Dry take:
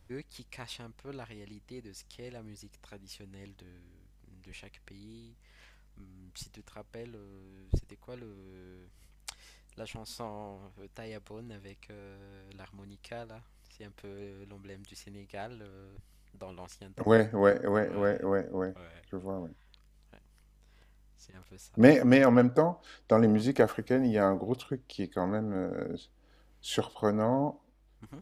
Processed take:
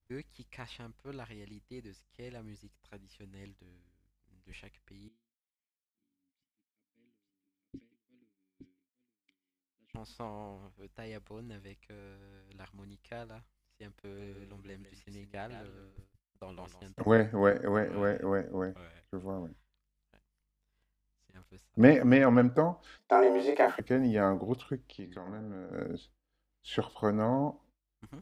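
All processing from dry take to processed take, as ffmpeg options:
ffmpeg -i in.wav -filter_complex "[0:a]asettb=1/sr,asplit=3[link_01][link_02][link_03];[link_01]atrim=end=5.084[link_04];[link_02]atrim=start=5.08:end=9.94,asetpts=PTS-STARTPTS,afade=type=in:duration=0.004:curve=qsin,afade=type=out:start_time=4.856:duration=0.004:curve=qsin,asplit=3[link_05][link_06][link_07];[link_05]bandpass=frequency=270:width_type=q:width=8,volume=0dB[link_08];[link_06]bandpass=frequency=2290:width_type=q:width=8,volume=-6dB[link_09];[link_07]bandpass=frequency=3010:width_type=q:width=8,volume=-9dB[link_10];[link_08][link_09][link_10]amix=inputs=3:normalize=0,aecho=1:1:865:0.562,atrim=end_sample=214326[link_11];[link_03]atrim=start=9.936[link_12];[link_04][link_11]acrossfade=duration=0.004:curve1=hsin:curve2=qsin[link_13];[link_13][link_12]acrossfade=duration=0.004:curve1=qsin:curve2=hsin,asettb=1/sr,asplit=3[link_14][link_15][link_16];[link_14]atrim=end=13.994[link_17];[link_15]atrim=start=13.99:end=17.12,asetpts=PTS-STARTPTS,afade=type=in:duration=0.004:curve=qsin,afade=type=out:start_time=3.126:duration=0.004:curve=qsin,agate=range=-13dB:threshold=-55dB:ratio=16:release=100:detection=peak,aecho=1:1:159:0.355,atrim=end_sample=138033[link_18];[link_16]atrim=start=17.116[link_19];[link_17][link_18]acrossfade=duration=0.004:curve1=hsin:curve2=qsin[link_20];[link_20][link_19]acrossfade=duration=0.004:curve1=qsin:curve2=hsin,asettb=1/sr,asplit=3[link_21][link_22][link_23];[link_21]atrim=end=22.984[link_24];[link_22]atrim=start=22.98:end=23.8,asetpts=PTS-STARTPTS,afade=type=in:duration=0.004:curve=qsin,afade=type=out:start_time=0.816:duration=0.004:curve=qsin,highshelf=frequency=6100:gain=7.5,afreqshift=160,asplit=2[link_25][link_26];[link_26]adelay=31,volume=-2.5dB[link_27];[link_25][link_27]amix=inputs=2:normalize=0,atrim=end_sample=36162[link_28];[link_23]atrim=start=23.796[link_29];[link_24][link_28]acrossfade=duration=0.004:curve1=hsin:curve2=qsin[link_30];[link_30][link_29]acrossfade=duration=0.004:curve1=qsin:curve2=hsin,asettb=1/sr,asplit=3[link_31][link_32][link_33];[link_31]atrim=end=24.904[link_34];[link_32]atrim=start=24.9:end=25.73,asetpts=PTS-STARTPTS,afade=type=in:duration=0.004:curve=qsin,afade=type=out:start_time=0.826:duration=0.004:curve=qsin,lowpass=5100,bandreject=frequency=89.67:width_type=h:width=4,bandreject=frequency=179.34:width_type=h:width=4,bandreject=frequency=269.01:width_type=h:width=4,bandreject=frequency=358.68:width_type=h:width=4,bandreject=frequency=448.35:width_type=h:width=4,bandreject=frequency=538.02:width_type=h:width=4,bandreject=frequency=627.69:width_type=h:width=4,bandreject=frequency=717.36:width_type=h:width=4,bandreject=frequency=807.03:width_type=h:width=4,bandreject=frequency=896.7:width_type=h:width=4,bandreject=frequency=986.37:width_type=h:width=4,bandreject=frequency=1076.04:width_type=h:width=4,bandreject=frequency=1165.71:width_type=h:width=4,bandreject=frequency=1255.38:width_type=h:width=4,bandreject=frequency=1345.05:width_type=h:width=4,bandreject=frequency=1434.72:width_type=h:width=4,bandreject=frequency=1524.39:width_type=h:width=4,bandreject=frequency=1614.06:width_type=h:width=4,bandreject=frequency=1703.73:width_type=h:width=4,bandreject=frequency=1793.4:width_type=h:width=4,bandreject=frequency=1883.07:width_type=h:width=4,bandreject=frequency=1972.74:width_type=h:width=4,acompressor=threshold=-40dB:ratio=3:attack=3.2:release=140:knee=1:detection=peak[link_35];[link_33]atrim=start=25.726[link_36];[link_34][link_35]acrossfade=duration=0.004:curve1=hsin:curve2=qsin[link_37];[link_37][link_36]acrossfade=duration=0.004:curve1=qsin:curve2=hsin,acrossover=split=3300[link_38][link_39];[link_39]acompressor=threshold=-58dB:ratio=4:attack=1:release=60[link_40];[link_38][link_40]amix=inputs=2:normalize=0,agate=range=-33dB:threshold=-48dB:ratio=3:detection=peak,equalizer=frequency=560:width_type=o:width=1.4:gain=-2.5" out.wav

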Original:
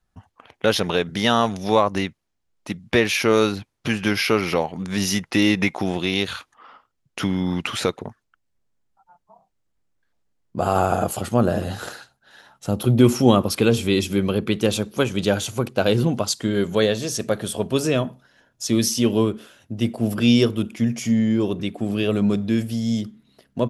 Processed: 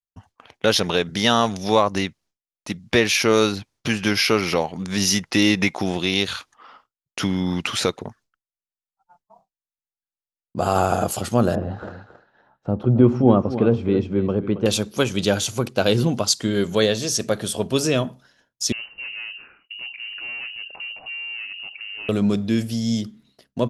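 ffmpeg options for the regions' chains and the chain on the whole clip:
ffmpeg -i in.wav -filter_complex "[0:a]asettb=1/sr,asplit=3[link_01][link_02][link_03];[link_01]atrim=end=11.554[link_04];[link_02]atrim=start=11.55:end=14.66,asetpts=PTS-STARTPTS,afade=type=in:duration=0.004:curve=qsin,afade=type=out:start_time=3.106:duration=0.004:curve=qsin,lowpass=1100,aecho=1:1:273:0.251,atrim=end_sample=137151[link_05];[link_03]atrim=start=14.656[link_06];[link_04][link_05]acrossfade=duration=0.004:curve1=hsin:curve2=qsin[link_07];[link_07][link_06]acrossfade=duration=0.004:curve1=qsin:curve2=hsin,asettb=1/sr,asplit=3[link_08][link_09][link_10];[link_08]atrim=end=18.724[link_11];[link_09]atrim=start=18.72:end=22.09,asetpts=PTS-STARTPTS,afade=type=in:duration=0.004:curve=qsin,afade=type=out:start_time=3.366:duration=0.004:curve=qsin,asoftclip=type=hard:threshold=-21.5dB,acompressor=threshold=-34dB:ratio=6:attack=3.2:release=140:knee=1:detection=peak,lowpass=frequency=2600:width_type=q:width=0.5098,lowpass=frequency=2600:width_type=q:width=0.6013,lowpass=frequency=2600:width_type=q:width=0.9,lowpass=frequency=2600:width_type=q:width=2.563,afreqshift=-3000[link_12];[link_10]atrim=start=22.086[link_13];[link_11][link_12]acrossfade=duration=0.004:curve1=hsin:curve2=qsin[link_14];[link_14][link_13]acrossfade=duration=0.004:curve1=qsin:curve2=hsin,agate=range=-33dB:threshold=-50dB:ratio=3:detection=peak,equalizer=frequency=5400:width_type=o:width=1.2:gain=6" out.wav

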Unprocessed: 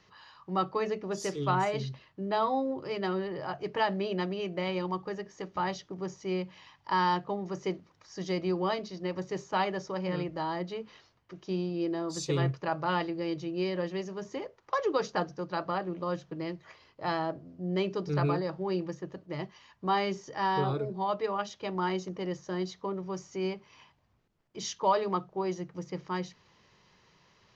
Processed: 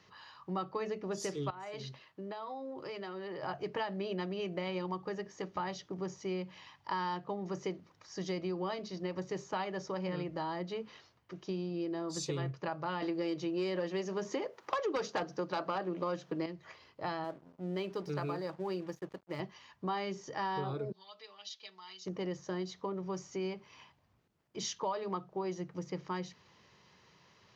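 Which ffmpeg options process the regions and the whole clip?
ffmpeg -i in.wav -filter_complex "[0:a]asettb=1/sr,asplit=3[link_01][link_02][link_03];[link_01]atrim=end=1.504[link_04];[link_02]atrim=start=1.5:end=3.43,asetpts=PTS-STARTPTS,afade=type=in:duration=0.004:curve=qsin,afade=type=out:start_time=1.926:duration=0.004:curve=qsin,lowshelf=frequency=220:gain=-12,acompressor=threshold=-38dB:ratio=16:attack=3.2:release=140:knee=1:detection=peak[link_05];[link_03]atrim=start=3.426[link_06];[link_04][link_05]acrossfade=duration=0.004:curve1=hsin:curve2=qsin[link_07];[link_07][link_06]acrossfade=duration=0.004:curve1=qsin:curve2=hsin,asettb=1/sr,asplit=3[link_08][link_09][link_10];[link_08]atrim=end=13.024[link_11];[link_09]atrim=start=13.02:end=16.46,asetpts=PTS-STARTPTS,afade=type=in:duration=0.004:curve=qsin,afade=type=out:start_time=3.436:duration=0.004:curve=qsin,highpass=200,aeval=exprs='0.178*sin(PI/2*2*val(0)/0.178)':channel_layout=same[link_12];[link_10]atrim=start=16.456[link_13];[link_11][link_12]acrossfade=duration=0.004:curve1=hsin:curve2=qsin[link_14];[link_14][link_13]acrossfade=duration=0.004:curve1=qsin:curve2=hsin,asettb=1/sr,asplit=3[link_15][link_16][link_17];[link_15]atrim=end=17.244[link_18];[link_16]atrim=start=17.24:end=19.4,asetpts=PTS-STARTPTS,afade=type=in:duration=0.004:curve=qsin,afade=type=out:start_time=2.156:duration=0.004:curve=qsin,highpass=frequency=190:poles=1,aeval=exprs='sgn(val(0))*max(abs(val(0))-0.002,0)':channel_layout=same[link_19];[link_17]atrim=start=19.396[link_20];[link_18][link_19]acrossfade=duration=0.004:curve1=hsin:curve2=qsin[link_21];[link_21][link_20]acrossfade=duration=0.004:curve1=qsin:curve2=hsin,asettb=1/sr,asplit=3[link_22][link_23][link_24];[link_22]atrim=end=20.924[link_25];[link_23]atrim=start=20.92:end=22.06,asetpts=PTS-STARTPTS,afade=type=in:duration=0.004:curve=qsin,afade=type=out:start_time=1.136:duration=0.004:curve=qsin,acompressor=threshold=-34dB:ratio=3:attack=3.2:release=140:knee=1:detection=peak,bandpass=frequency=4200:width_type=q:width=2,aecho=1:1:4.6:0.96,atrim=end_sample=50274[link_26];[link_24]atrim=start=22.056[link_27];[link_25][link_26]acrossfade=duration=0.004:curve1=hsin:curve2=qsin[link_28];[link_28][link_27]acrossfade=duration=0.004:curve1=qsin:curve2=hsin,highpass=63,acompressor=threshold=-34dB:ratio=4" out.wav

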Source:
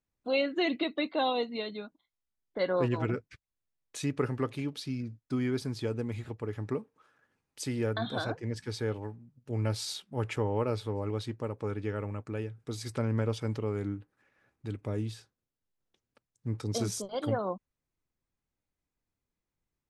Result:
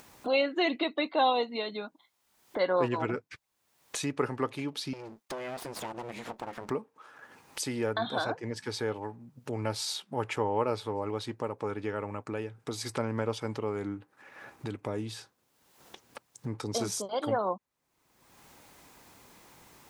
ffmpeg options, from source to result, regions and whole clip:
ffmpeg -i in.wav -filter_complex "[0:a]asettb=1/sr,asplit=3[link_01][link_02][link_03];[link_01]atrim=end=4.934[link_04];[link_02]atrim=start=4.93:end=6.7,asetpts=PTS-STARTPTS,afade=type=in:duration=0.004:curve=qsin,afade=type=out:start_time=1.766:duration=0.004:curve=qsin,highpass=frequency=96:poles=1,aeval=exprs='abs(val(0))':channel_layout=same,acompressor=threshold=-40dB:ratio=3:attack=3.2:release=140:knee=1:detection=peak[link_05];[link_03]atrim=start=6.696[link_06];[link_04][link_05]acrossfade=duration=0.004:curve1=hsin:curve2=qsin[link_07];[link_07][link_06]acrossfade=duration=0.004:curve1=qsin:curve2=hsin,highpass=frequency=290:poles=1,equalizer=frequency=900:width_type=o:width=0.73:gain=5.5,acompressor=mode=upward:threshold=-32dB:ratio=2.5,volume=2dB" out.wav

